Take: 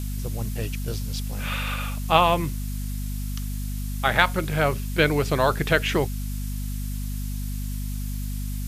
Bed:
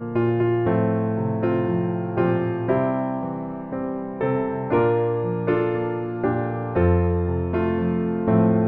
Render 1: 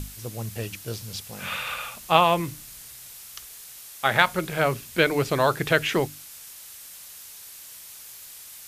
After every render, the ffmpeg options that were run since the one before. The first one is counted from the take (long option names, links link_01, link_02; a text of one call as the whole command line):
ffmpeg -i in.wav -af "bandreject=frequency=50:width_type=h:width=6,bandreject=frequency=100:width_type=h:width=6,bandreject=frequency=150:width_type=h:width=6,bandreject=frequency=200:width_type=h:width=6,bandreject=frequency=250:width_type=h:width=6,bandreject=frequency=300:width_type=h:width=6" out.wav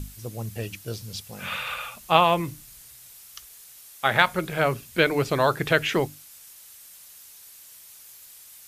ffmpeg -i in.wav -af "afftdn=noise_reduction=6:noise_floor=-44" out.wav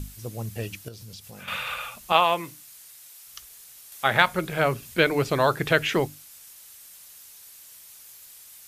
ffmpeg -i in.wav -filter_complex "[0:a]asettb=1/sr,asplit=3[link_01][link_02][link_03];[link_01]atrim=end=0.884[link_04];[link_02]atrim=start=0.88:end=1.48,asetpts=PTS-STARTPTS,afade=type=in:duration=0.004:curve=qsin,afade=type=out:start_time=0.596:duration=0.004:curve=qsin,acompressor=threshold=-39dB:ratio=6:attack=3.2:release=140:knee=1:detection=peak[link_05];[link_03]atrim=start=1.476[link_06];[link_04][link_05]acrossfade=duration=0.004:curve1=hsin:curve2=qsin[link_07];[link_07][link_06]acrossfade=duration=0.004:curve1=qsin:curve2=hsin,asettb=1/sr,asplit=3[link_08][link_09][link_10];[link_08]atrim=end=2.124[link_11];[link_09]atrim=start=2.12:end=3.27,asetpts=PTS-STARTPTS,afade=type=in:duration=0.004:curve=qsin,afade=type=out:start_time=1.146:duration=0.004:curve=qsin,highpass=frequency=550:poles=1[link_12];[link_10]atrim=start=3.266[link_13];[link_11][link_12]acrossfade=duration=0.004:curve1=hsin:curve2=qsin[link_14];[link_14][link_13]acrossfade=duration=0.004:curve1=qsin:curve2=hsin,asettb=1/sr,asplit=3[link_15][link_16][link_17];[link_15]atrim=end=3.924[link_18];[link_16]atrim=start=3.92:end=4.94,asetpts=PTS-STARTPTS,afade=type=in:duration=0.004:curve=qsin,afade=type=out:start_time=1.016:duration=0.004:curve=qsin,acompressor=mode=upward:threshold=-37dB:ratio=2.5:attack=3.2:release=140:knee=2.83:detection=peak[link_19];[link_17]atrim=start=4.936[link_20];[link_18][link_19]acrossfade=duration=0.004:curve1=hsin:curve2=qsin[link_21];[link_21][link_20]acrossfade=duration=0.004:curve1=qsin:curve2=hsin" out.wav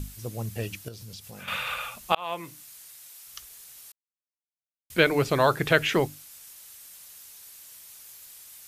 ffmpeg -i in.wav -filter_complex "[0:a]asplit=4[link_01][link_02][link_03][link_04];[link_01]atrim=end=2.15,asetpts=PTS-STARTPTS,afade=type=out:start_time=2.146:duration=0.004:curve=hsin[link_05];[link_02]atrim=start=2.15:end=3.92,asetpts=PTS-STARTPTS,afade=type=in:duration=0.46,afade=type=out:start_time=1.766:duration=0.004:curve=hsin[link_06];[link_03]atrim=start=3.92:end=4.9,asetpts=PTS-STARTPTS,volume=0[link_07];[link_04]atrim=start=4.9,asetpts=PTS-STARTPTS,afade=type=in:duration=0.004:curve=hsin[link_08];[link_05][link_06][link_07][link_08]concat=n=4:v=0:a=1" out.wav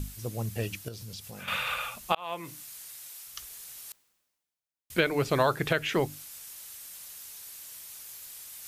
ffmpeg -i in.wav -af "alimiter=limit=-12dB:level=0:latency=1:release=479,areverse,acompressor=mode=upward:threshold=-39dB:ratio=2.5,areverse" out.wav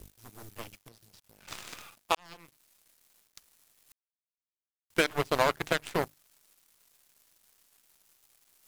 ffmpeg -i in.wav -af "aeval=exprs='0.266*(cos(1*acos(clip(val(0)/0.266,-1,1)))-cos(1*PI/2))+0.00237*(cos(3*acos(clip(val(0)/0.266,-1,1)))-cos(3*PI/2))+0.00668*(cos(6*acos(clip(val(0)/0.266,-1,1)))-cos(6*PI/2))+0.0473*(cos(7*acos(clip(val(0)/0.266,-1,1)))-cos(7*PI/2))':channel_layout=same,acrusher=bits=7:mix=0:aa=0.5" out.wav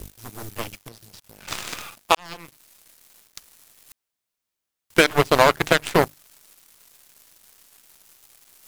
ffmpeg -i in.wav -af "volume=12dB,alimiter=limit=-3dB:level=0:latency=1" out.wav